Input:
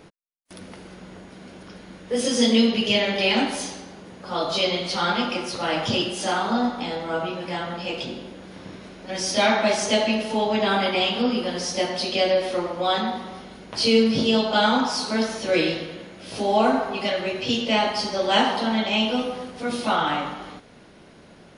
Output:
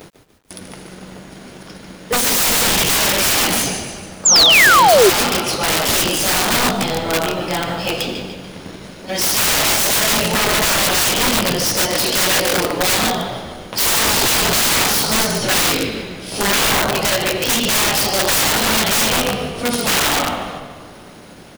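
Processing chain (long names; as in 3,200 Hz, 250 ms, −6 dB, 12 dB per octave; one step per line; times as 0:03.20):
mu-law and A-law mismatch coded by A
noise gate with hold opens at −47 dBFS
high-shelf EQ 7,200 Hz +11 dB
upward compression, threshold −40 dBFS
echo with shifted repeats 146 ms, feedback 49%, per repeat −48 Hz, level −8.5 dB
wrap-around overflow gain 18.5 dB
sound drawn into the spectrogram fall, 0:04.25–0:05.10, 350–7,600 Hz −18 dBFS
comb and all-pass reverb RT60 3.1 s, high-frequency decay 0.35×, pre-delay 70 ms, DRR 16 dB
bit reduction 11 bits
level +8 dB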